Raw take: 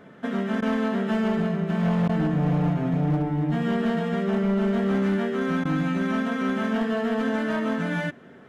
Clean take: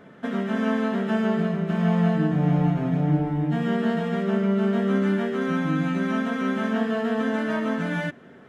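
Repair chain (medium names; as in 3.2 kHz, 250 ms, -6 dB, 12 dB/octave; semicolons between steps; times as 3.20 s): clip repair -18.5 dBFS; interpolate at 0.61/2.08/5.64 s, 11 ms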